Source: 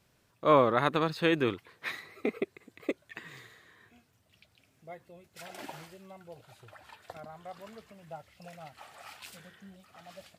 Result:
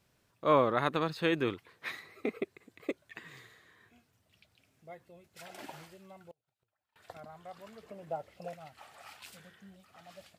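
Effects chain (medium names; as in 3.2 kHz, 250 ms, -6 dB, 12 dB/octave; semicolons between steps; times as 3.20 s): 6.31–6.96 s: inverted gate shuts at -46 dBFS, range -32 dB; 7.83–8.54 s: peaking EQ 460 Hz +13.5 dB 2 oct; trim -3 dB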